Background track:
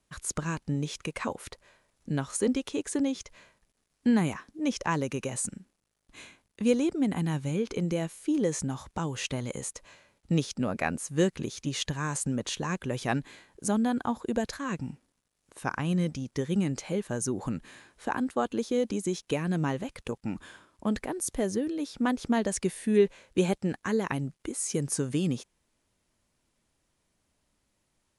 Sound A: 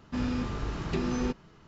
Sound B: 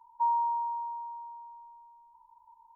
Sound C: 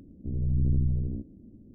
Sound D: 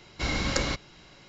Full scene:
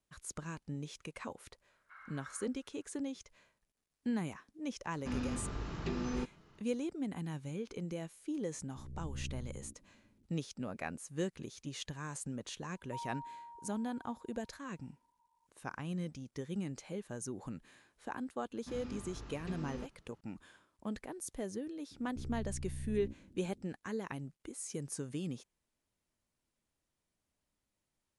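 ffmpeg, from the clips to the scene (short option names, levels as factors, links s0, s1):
-filter_complex "[1:a]asplit=2[s0][s1];[3:a]asplit=2[s2][s3];[0:a]volume=0.266[s4];[4:a]asuperpass=centerf=1400:order=4:qfactor=2.7[s5];[2:a]bandreject=f=860:w=6.9[s6];[s3]alimiter=level_in=1.78:limit=0.0631:level=0:latency=1:release=16,volume=0.562[s7];[s5]atrim=end=1.28,asetpts=PTS-STARTPTS,volume=0.211,afade=t=in:d=0.004:c=hsin,afade=t=out:st=1.276:d=0.004:c=hsin,adelay=1700[s8];[s0]atrim=end=1.67,asetpts=PTS-STARTPTS,volume=0.447,afade=t=in:d=0.004:c=hsin,afade=t=out:st=1.666:d=0.004:c=hsin,adelay=217413S[s9];[s2]atrim=end=1.74,asetpts=PTS-STARTPTS,volume=0.126,afade=t=in:d=0.004:c=hsin,afade=t=out:st=1.736:d=0.004:c=hsin,adelay=8510[s10];[s6]atrim=end=2.75,asetpts=PTS-STARTPTS,volume=0.178,afade=t=in:d=0.004:c=hsin,afade=t=out:st=2.746:d=0.004:c=hsin,adelay=12720[s11];[s1]atrim=end=1.67,asetpts=PTS-STARTPTS,volume=0.178,afade=t=in:d=0.004:c=hsin,afade=t=out:st=1.666:d=0.004:c=hsin,adelay=18540[s12];[s7]atrim=end=1.74,asetpts=PTS-STARTPTS,volume=0.335,afade=t=in:d=0.004:c=hsin,afade=t=out:st=1.736:d=0.004:c=hsin,adelay=21910[s13];[s4][s8][s9][s10][s11][s12][s13]amix=inputs=7:normalize=0"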